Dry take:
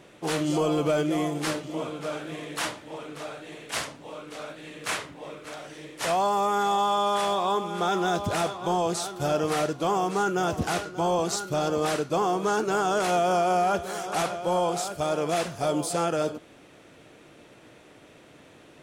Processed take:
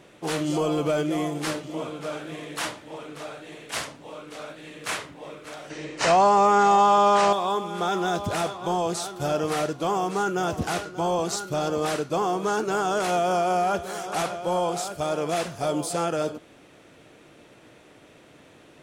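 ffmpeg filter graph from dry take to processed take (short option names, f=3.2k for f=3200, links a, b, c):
-filter_complex "[0:a]asettb=1/sr,asplit=3[a][b][c];[a]atrim=end=5.704[d];[b]atrim=start=5.7:end=7.33,asetpts=PTS-STARTPTS,afade=t=in:d=0.004:c=qsin,afade=t=out:st=1.626:d=0.004:c=qsin,lowpass=f=7.4k:w=0.5412,lowpass=f=7.4k:w=1.3066,acontrast=73,bandreject=f=3.4k:w=8.1[e];[c]atrim=start=7.326[f];[d][e]acrossfade=d=0.004:c1=hsin:c2=qsin[g];[g][f]acrossfade=d=0.004:c1=qsin:c2=hsin"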